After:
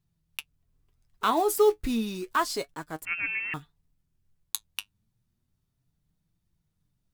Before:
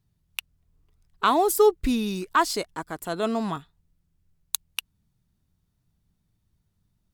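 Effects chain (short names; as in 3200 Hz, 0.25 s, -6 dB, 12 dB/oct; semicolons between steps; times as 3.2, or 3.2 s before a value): block floating point 5-bit; flange 0.31 Hz, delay 5.7 ms, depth 4.1 ms, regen +53%; 3.05–3.54 inverted band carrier 2900 Hz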